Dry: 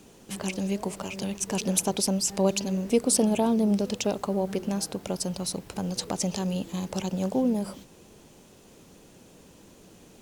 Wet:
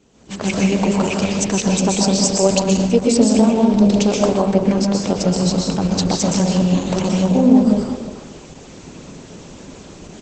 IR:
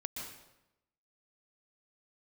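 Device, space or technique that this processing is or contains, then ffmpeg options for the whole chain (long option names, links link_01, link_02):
speakerphone in a meeting room: -filter_complex "[0:a]asplit=3[link_01][link_02][link_03];[link_01]afade=type=out:start_time=4.42:duration=0.02[link_04];[link_02]highshelf=frequency=4500:gain=-3.5,afade=type=in:start_time=4.42:duration=0.02,afade=type=out:start_time=5.92:duration=0.02[link_05];[link_03]afade=type=in:start_time=5.92:duration=0.02[link_06];[link_04][link_05][link_06]amix=inputs=3:normalize=0[link_07];[1:a]atrim=start_sample=2205[link_08];[link_07][link_08]afir=irnorm=-1:irlink=0,asplit=2[link_09][link_10];[link_10]adelay=350,highpass=300,lowpass=3400,asoftclip=type=hard:threshold=-19.5dB,volume=-13dB[link_11];[link_09][link_11]amix=inputs=2:normalize=0,dynaudnorm=framelen=130:gausssize=5:maxgain=16dB" -ar 48000 -c:a libopus -b:a 12k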